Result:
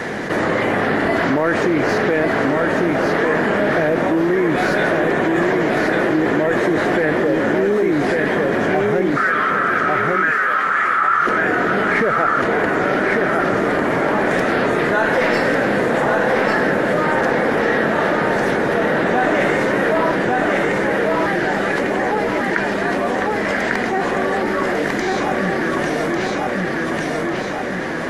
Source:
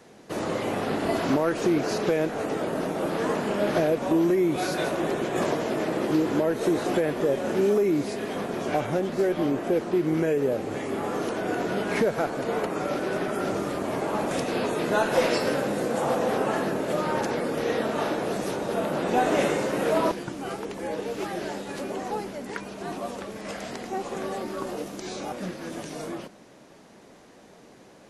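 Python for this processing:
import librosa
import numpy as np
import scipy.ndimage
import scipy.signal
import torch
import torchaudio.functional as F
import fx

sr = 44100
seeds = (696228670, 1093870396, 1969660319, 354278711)

y = fx.tracing_dist(x, sr, depth_ms=0.029)
y = fx.high_shelf(y, sr, hz=4800.0, db=-11.5)
y = fx.highpass_res(y, sr, hz=1300.0, q=12.0, at=(9.16, 11.27))
y = fx.peak_eq(y, sr, hz=1800.0, db=11.5, octaves=0.69)
y = fx.notch(y, sr, hz=2600.0, q=25.0)
y = fx.echo_feedback(y, sr, ms=1148, feedback_pct=30, wet_db=-4)
y = fx.env_flatten(y, sr, amount_pct=70)
y = y * librosa.db_to_amplitude(1.5)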